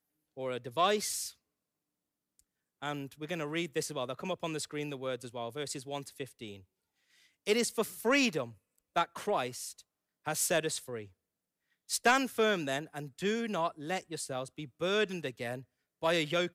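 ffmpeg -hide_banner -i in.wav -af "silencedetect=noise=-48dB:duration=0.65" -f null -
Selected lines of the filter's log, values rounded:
silence_start: 1.32
silence_end: 2.39 | silence_duration: 1.08
silence_start: 6.60
silence_end: 7.46 | silence_duration: 0.86
silence_start: 11.07
silence_end: 11.89 | silence_duration: 0.82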